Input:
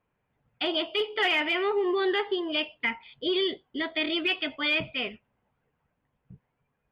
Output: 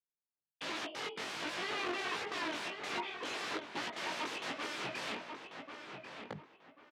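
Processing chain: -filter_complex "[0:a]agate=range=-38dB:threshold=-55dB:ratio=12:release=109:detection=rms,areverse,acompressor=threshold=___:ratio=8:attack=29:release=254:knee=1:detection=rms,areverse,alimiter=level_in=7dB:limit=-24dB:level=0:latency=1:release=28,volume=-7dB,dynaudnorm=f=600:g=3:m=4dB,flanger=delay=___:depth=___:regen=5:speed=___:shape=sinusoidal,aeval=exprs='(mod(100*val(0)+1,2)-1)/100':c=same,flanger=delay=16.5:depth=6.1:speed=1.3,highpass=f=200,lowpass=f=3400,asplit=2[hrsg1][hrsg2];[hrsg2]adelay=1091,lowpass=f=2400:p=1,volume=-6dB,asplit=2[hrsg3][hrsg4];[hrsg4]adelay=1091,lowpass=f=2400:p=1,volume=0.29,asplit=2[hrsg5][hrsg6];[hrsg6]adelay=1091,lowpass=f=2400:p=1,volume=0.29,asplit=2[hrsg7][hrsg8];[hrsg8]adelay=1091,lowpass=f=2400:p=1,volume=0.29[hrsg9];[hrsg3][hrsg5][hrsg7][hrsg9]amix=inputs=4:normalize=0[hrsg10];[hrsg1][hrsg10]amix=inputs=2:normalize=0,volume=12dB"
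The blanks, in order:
-38dB, 9.8, 9.1, 0.55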